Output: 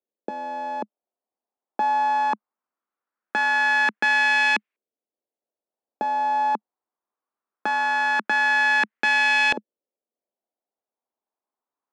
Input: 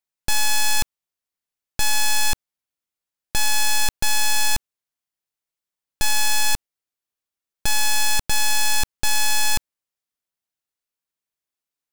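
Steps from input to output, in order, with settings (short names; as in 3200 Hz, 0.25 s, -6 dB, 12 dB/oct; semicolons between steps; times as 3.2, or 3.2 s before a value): Chebyshev high-pass 210 Hz, order 5; LFO low-pass saw up 0.21 Hz 480–2300 Hz; gain +4.5 dB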